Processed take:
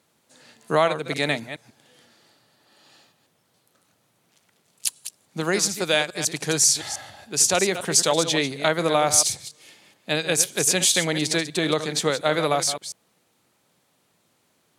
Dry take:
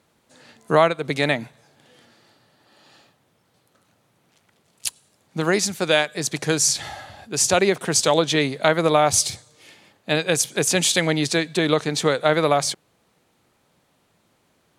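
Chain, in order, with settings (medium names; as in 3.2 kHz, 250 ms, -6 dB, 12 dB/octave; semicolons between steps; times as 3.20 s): chunks repeated in reverse 142 ms, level -10.5 dB; high-pass 95 Hz; treble shelf 3.9 kHz +7 dB; trim -4 dB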